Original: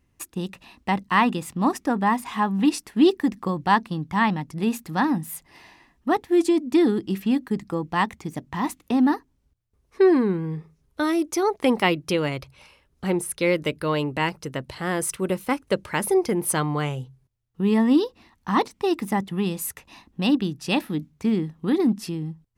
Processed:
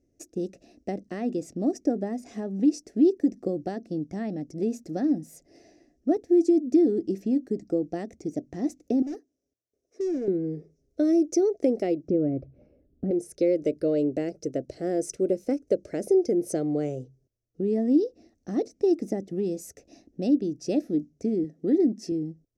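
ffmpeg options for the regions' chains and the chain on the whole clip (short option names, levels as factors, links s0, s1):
-filter_complex "[0:a]asettb=1/sr,asplit=3[s0][s1][s2];[s0]atrim=end=9.024[s3];[s1]atrim=start=9.02:end=10.28,asetpts=PTS-STARTPTS,afade=t=in:d=0.004:c=qsin,afade=t=out:st=1.256:d=0.004:c=qsin,highpass=f=590:p=1,asoftclip=type=hard:threshold=0.0335,bandreject=f=4400:w=11[s4];[s2]atrim=start=10.276[s5];[s3][s4]acrossfade=d=0.004:c1=hsin:c2=qsin[s6];[s6][s5]acrossfade=d=0.004:c1=qsin:c2=hsin,asettb=1/sr,asplit=3[s7][s8][s9];[s7]atrim=end=12.084[s10];[s8]atrim=start=12.08:end=13.11,asetpts=PTS-STARTPTS,afade=t=in:d=0.004:c=qsin,afade=t=out:st=1.026:d=0.004:c=qsin,lowpass=1100,lowshelf=f=330:t=q:w=1.5:g=7[s11];[s9]atrim=start=13.106[s12];[s10][s11]acrossfade=d=0.004:c1=hsin:c2=qsin[s13];[s13][s12]acrossfade=d=0.004:c1=qsin:c2=hsin,asettb=1/sr,asplit=3[s14][s15][s16];[s14]atrim=end=21.444[s17];[s15]atrim=start=21.44:end=22.12,asetpts=PTS-STARTPTS,afade=t=in:d=0.004:c=qsin,afade=t=out:st=0.676:d=0.004:c=qsin,highpass=130,equalizer=f=1900:w=6.7:g=9[s18];[s16]atrim=start=22.116[s19];[s17][s18]acrossfade=d=0.004:c1=hsin:c2=qsin[s20];[s20][s19]acrossfade=d=0.004:c1=qsin:c2=hsin,aemphasis=mode=reproduction:type=cd,acompressor=threshold=0.0708:ratio=2.5,firequalizer=gain_entry='entry(180,0);entry(290,12);entry(670,10);entry(950,-26);entry(1400,-10);entry(2200,-7);entry(3200,-12);entry(5700,13);entry(9600,-1);entry(14000,-5)':delay=0.05:min_phase=1,volume=0.422"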